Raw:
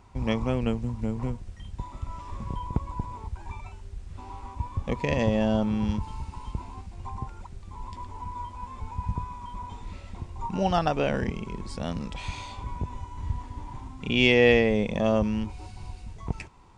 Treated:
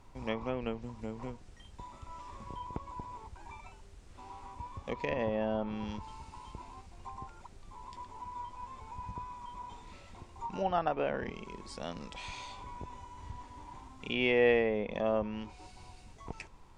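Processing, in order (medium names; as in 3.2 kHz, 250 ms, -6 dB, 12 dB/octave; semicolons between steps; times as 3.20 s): tone controls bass -11 dB, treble +2 dB; added noise brown -51 dBFS; low-pass that closes with the level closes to 2.1 kHz, closed at -24 dBFS; trim -5 dB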